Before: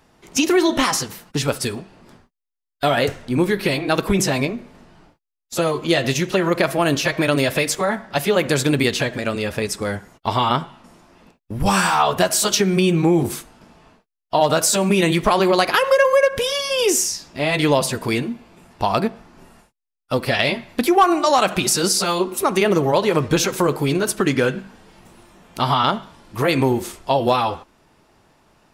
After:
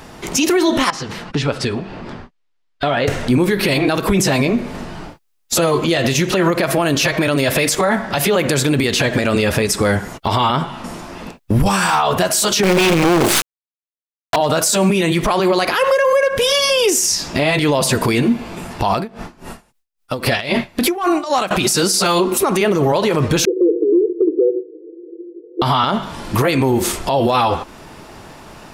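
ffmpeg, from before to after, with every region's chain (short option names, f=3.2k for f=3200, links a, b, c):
-filter_complex "[0:a]asettb=1/sr,asplit=3[a][b][c];[a]atrim=end=0.904[d];[b]atrim=start=0.9:end=3.08,asetpts=PTS-STARTPTS,afade=t=in:d=0.004:c=qsin,afade=t=out:st=2.176:d=0.004:c=qsin,lowpass=3.9k,acompressor=threshold=-46dB:ratio=2:attack=3.2:release=140:knee=1:detection=peak[e];[c]atrim=start=3.076[f];[d][e]acrossfade=d=0.004:c1=hsin:c2=qsin[g];[g][f]acrossfade=d=0.004:c1=qsin:c2=hsin,asettb=1/sr,asplit=3[h][i][j];[h]atrim=end=12.634[k];[i]atrim=start=12.63:end=14.36,asetpts=PTS-STARTPTS,afade=t=in:d=0.004:c=qsin,afade=t=out:st=1.726:d=0.004:c=qsin,acrusher=bits=3:dc=4:mix=0:aa=0.000001,asplit=2[l][m];[m]highpass=f=720:p=1,volume=30dB,asoftclip=type=tanh:threshold=-4dB[n];[l][n]amix=inputs=2:normalize=0,lowpass=f=3.8k:p=1,volume=-6dB[o];[j]atrim=start=14.356[p];[k][o]acrossfade=d=0.004:c1=hsin:c2=qsin[q];[q][p]acrossfade=d=0.004:c1=qsin:c2=hsin,asettb=1/sr,asplit=3[r][s][t];[r]atrim=end=18.964[u];[s]atrim=start=18.96:end=21.51,asetpts=PTS-STARTPTS,afade=t=in:d=0.004:c=qsin,afade=t=out:st=2.546:d=0.004:c=qsin,acompressor=threshold=-18dB:ratio=6:attack=3.2:release=140:knee=1:detection=peak,aeval=exprs='val(0)*pow(10,-21*(0.5-0.5*cos(2*PI*3.7*n/s))/20)':c=same[v];[t]atrim=start=21.506[w];[u][v]acrossfade=d=0.004:c1=hsin:c2=qsin[x];[x][w]acrossfade=d=0.004:c1=qsin:c2=hsin,asettb=1/sr,asplit=3[y][z][aa];[y]atrim=end=23.454[ab];[z]atrim=start=23.45:end=25.62,asetpts=PTS-STARTPTS,afade=t=in:d=0.004:c=qsin,afade=t=out:st=2.166:d=0.004:c=qsin,asuperpass=centerf=390:order=12:qfactor=2.2,aecho=1:1:5.9:0.43,atrim=end_sample=95697[ac];[aa]atrim=start=25.616[ad];[ab][ac]acrossfade=d=0.004:c1=hsin:c2=qsin[ae];[ae][ad]acrossfade=d=0.004:c1=qsin:c2=hsin,acompressor=threshold=-30dB:ratio=2.5,alimiter=level_in=24.5dB:limit=-1dB:release=50:level=0:latency=1,volume=-6dB"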